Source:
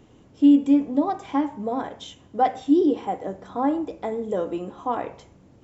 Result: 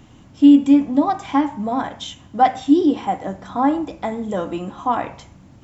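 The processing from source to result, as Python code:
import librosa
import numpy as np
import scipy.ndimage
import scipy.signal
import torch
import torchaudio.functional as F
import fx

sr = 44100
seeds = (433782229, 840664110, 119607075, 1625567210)

y = fx.peak_eq(x, sr, hz=440.0, db=-12.0, octaves=0.76)
y = y * 10.0 ** (8.5 / 20.0)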